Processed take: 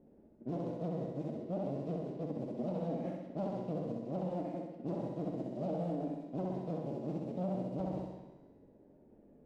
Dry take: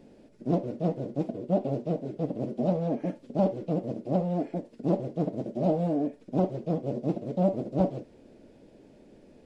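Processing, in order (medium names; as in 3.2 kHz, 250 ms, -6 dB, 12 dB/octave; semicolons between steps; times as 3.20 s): flutter echo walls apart 11.1 m, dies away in 1 s; level-controlled noise filter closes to 820 Hz, open at -25 dBFS; feedback comb 76 Hz, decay 1.5 s, harmonics all, mix 70%; peak limiter -28 dBFS, peak gain reduction 7 dB; sliding maximum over 3 samples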